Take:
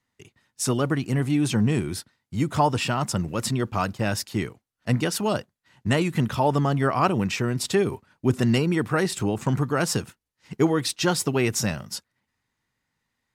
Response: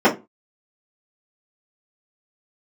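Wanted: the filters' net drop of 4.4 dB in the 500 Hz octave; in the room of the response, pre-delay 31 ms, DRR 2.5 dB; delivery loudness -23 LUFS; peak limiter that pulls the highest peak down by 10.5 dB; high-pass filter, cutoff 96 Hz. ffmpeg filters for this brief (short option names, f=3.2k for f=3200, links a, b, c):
-filter_complex "[0:a]highpass=96,equalizer=f=500:t=o:g=-6,alimiter=limit=-18dB:level=0:latency=1,asplit=2[a][b];[1:a]atrim=start_sample=2205,adelay=31[c];[b][c]afir=irnorm=-1:irlink=0,volume=-26dB[d];[a][d]amix=inputs=2:normalize=0,volume=2.5dB"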